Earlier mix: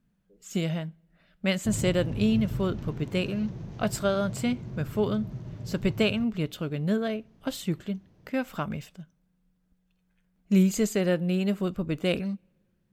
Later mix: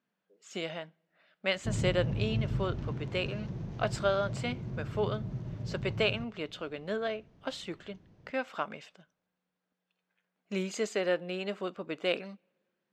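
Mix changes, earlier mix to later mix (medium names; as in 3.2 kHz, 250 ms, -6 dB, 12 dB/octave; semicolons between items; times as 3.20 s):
speech: add band-pass 470–6200 Hz; master: add treble shelf 7 kHz -8 dB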